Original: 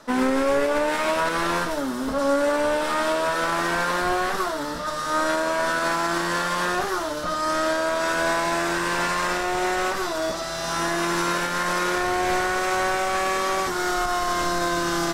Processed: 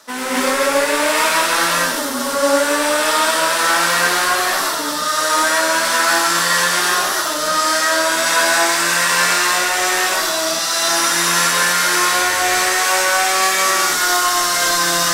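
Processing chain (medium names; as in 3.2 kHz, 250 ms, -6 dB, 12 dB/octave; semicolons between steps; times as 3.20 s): tilt EQ +3.5 dB/octave; gated-style reverb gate 290 ms rising, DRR -7 dB; trim -1 dB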